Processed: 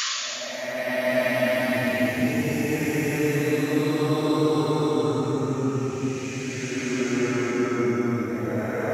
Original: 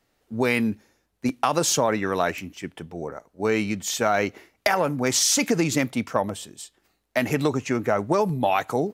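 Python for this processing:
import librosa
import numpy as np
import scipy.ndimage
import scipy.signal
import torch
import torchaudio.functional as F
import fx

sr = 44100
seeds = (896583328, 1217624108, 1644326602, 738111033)

y = fx.spec_paint(x, sr, seeds[0], shape='noise', start_s=6.07, length_s=0.96, low_hz=980.0, high_hz=7200.0, level_db=-20.0)
y = fx.paulstretch(y, sr, seeds[1], factor=11.0, window_s=0.25, from_s=7.05)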